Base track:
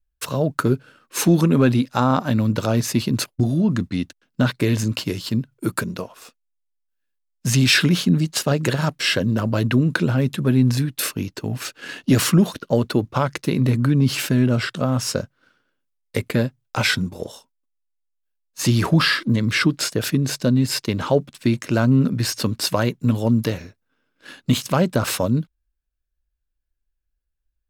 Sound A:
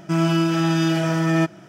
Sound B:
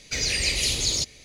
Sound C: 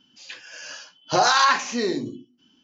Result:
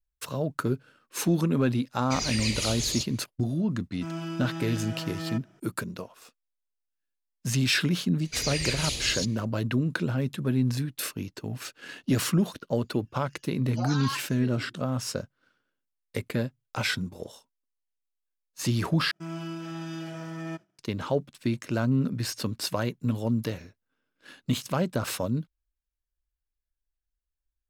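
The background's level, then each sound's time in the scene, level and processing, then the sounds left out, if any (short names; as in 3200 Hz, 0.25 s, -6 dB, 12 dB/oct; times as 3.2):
base track -8.5 dB
1.99 add B -6 dB
3.92 add A -15.5 dB
8.21 add B -6 dB
12.64 add C -14 dB + per-bin expansion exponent 2
19.11 replace with A -17 dB + expander -34 dBFS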